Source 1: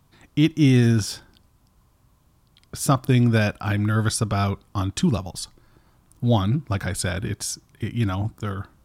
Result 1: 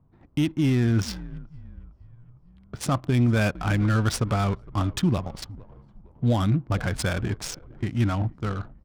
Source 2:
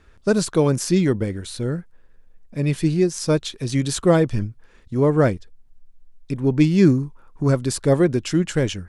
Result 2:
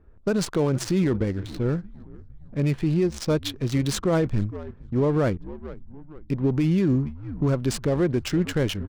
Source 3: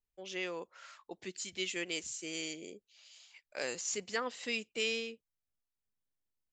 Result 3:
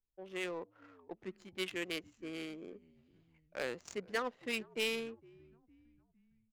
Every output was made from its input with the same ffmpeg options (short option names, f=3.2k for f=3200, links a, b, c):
-filter_complex "[0:a]asplit=5[a][b][c][d][e];[b]adelay=458,afreqshift=-79,volume=-20.5dB[f];[c]adelay=916,afreqshift=-158,volume=-26.3dB[g];[d]adelay=1374,afreqshift=-237,volume=-32.2dB[h];[e]adelay=1832,afreqshift=-316,volume=-38dB[i];[a][f][g][h][i]amix=inputs=5:normalize=0,alimiter=limit=-14dB:level=0:latency=1:release=47,adynamicsmooth=sensitivity=7:basefreq=690"